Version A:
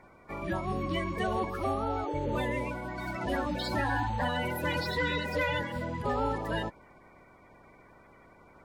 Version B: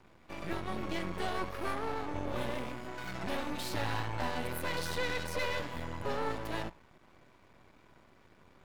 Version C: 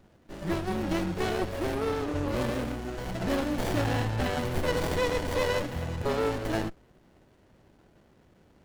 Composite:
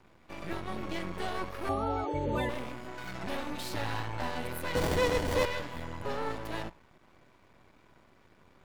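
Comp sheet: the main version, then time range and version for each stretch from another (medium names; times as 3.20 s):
B
1.69–2.49 s: from A
4.75–5.45 s: from C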